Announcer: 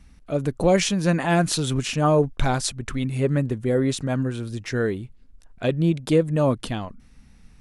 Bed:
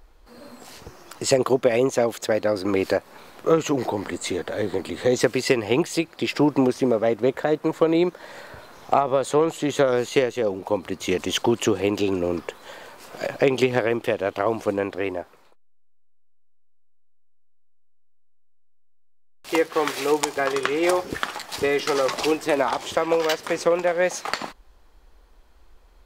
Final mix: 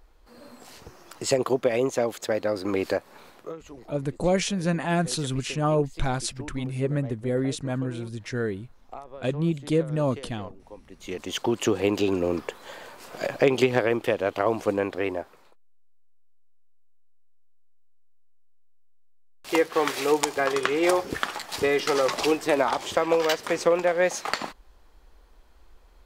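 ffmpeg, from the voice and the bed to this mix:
ffmpeg -i stem1.wav -i stem2.wav -filter_complex "[0:a]adelay=3600,volume=-4.5dB[link_01];[1:a]volume=16.5dB,afade=type=out:start_time=3.28:duration=0.25:silence=0.133352,afade=type=in:start_time=10.87:duration=0.98:silence=0.0944061[link_02];[link_01][link_02]amix=inputs=2:normalize=0" out.wav

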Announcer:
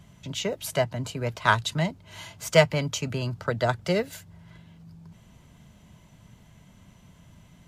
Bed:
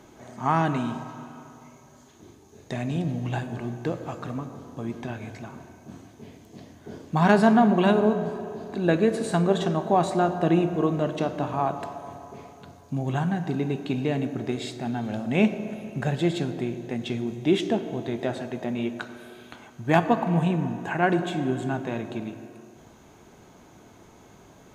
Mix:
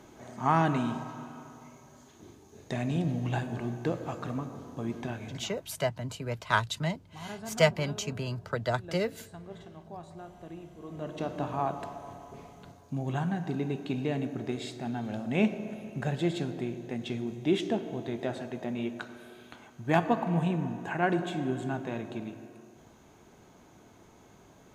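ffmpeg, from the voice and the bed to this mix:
ffmpeg -i stem1.wav -i stem2.wav -filter_complex "[0:a]adelay=5050,volume=-5dB[link_01];[1:a]volume=16.5dB,afade=type=out:start_time=5.06:duration=0.69:silence=0.0841395,afade=type=in:start_time=10.83:duration=0.57:silence=0.11885[link_02];[link_01][link_02]amix=inputs=2:normalize=0" out.wav

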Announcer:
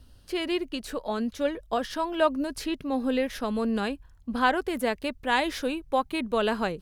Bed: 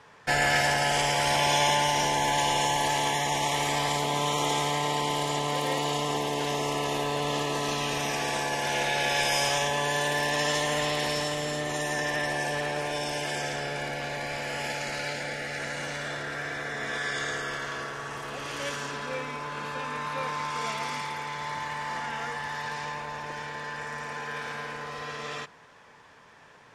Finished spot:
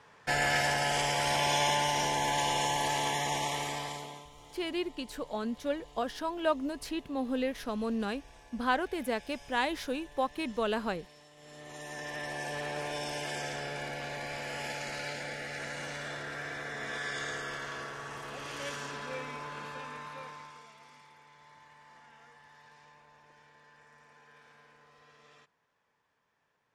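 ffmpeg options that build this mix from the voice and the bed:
ffmpeg -i stem1.wav -i stem2.wav -filter_complex "[0:a]adelay=4250,volume=-5.5dB[link_01];[1:a]volume=18dB,afade=type=out:start_time=3.33:duration=0.95:silence=0.0668344,afade=type=in:start_time=11.34:duration=1.49:silence=0.0749894,afade=type=out:start_time=19.4:duration=1.27:silence=0.125893[link_02];[link_01][link_02]amix=inputs=2:normalize=0" out.wav

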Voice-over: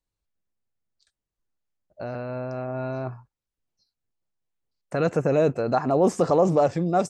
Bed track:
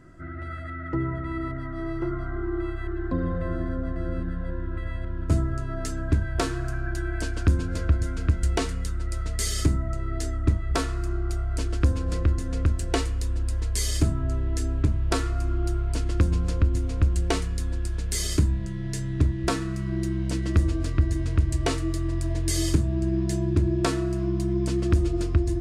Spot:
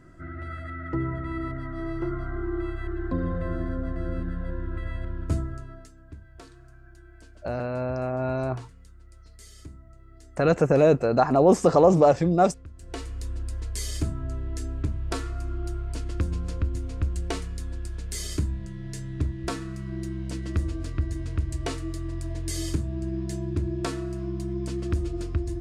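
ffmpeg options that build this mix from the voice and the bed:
ffmpeg -i stem1.wav -i stem2.wav -filter_complex "[0:a]adelay=5450,volume=2.5dB[link_01];[1:a]volume=15dB,afade=type=out:start_time=5.07:duration=0.83:silence=0.0944061,afade=type=in:start_time=12.73:duration=0.53:silence=0.158489[link_02];[link_01][link_02]amix=inputs=2:normalize=0" out.wav

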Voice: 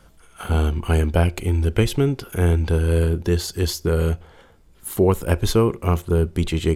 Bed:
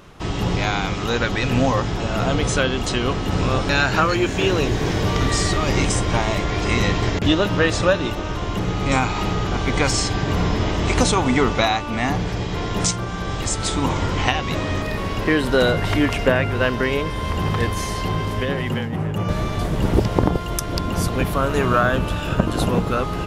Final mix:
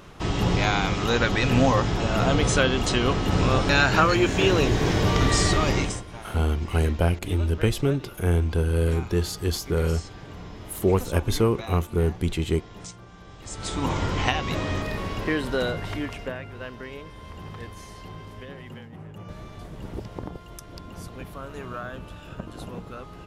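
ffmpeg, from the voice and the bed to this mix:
ffmpeg -i stem1.wav -i stem2.wav -filter_complex "[0:a]adelay=5850,volume=-4dB[link_01];[1:a]volume=15dB,afade=type=out:start_time=5.61:duration=0.43:silence=0.112202,afade=type=in:start_time=13.41:duration=0.52:silence=0.158489,afade=type=out:start_time=14.71:duration=1.7:silence=0.211349[link_02];[link_01][link_02]amix=inputs=2:normalize=0" out.wav

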